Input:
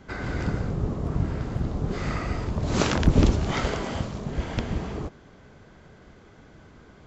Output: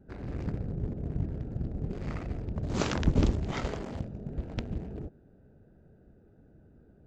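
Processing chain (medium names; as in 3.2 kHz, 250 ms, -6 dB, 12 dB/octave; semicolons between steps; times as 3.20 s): local Wiener filter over 41 samples; trim -6 dB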